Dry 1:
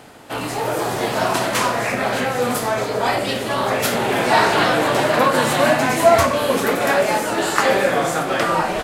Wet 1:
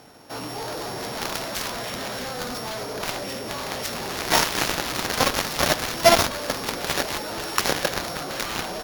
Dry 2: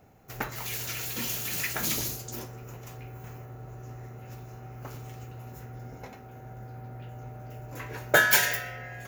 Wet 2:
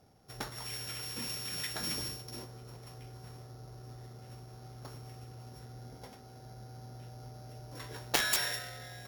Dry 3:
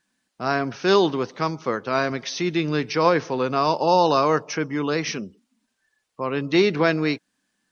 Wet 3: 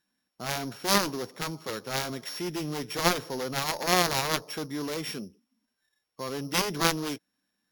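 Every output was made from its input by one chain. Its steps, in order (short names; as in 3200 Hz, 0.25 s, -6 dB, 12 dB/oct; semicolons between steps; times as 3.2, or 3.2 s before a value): sample sorter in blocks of 8 samples; added harmonics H 7 -12 dB, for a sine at -1 dBFS; gain -3.5 dB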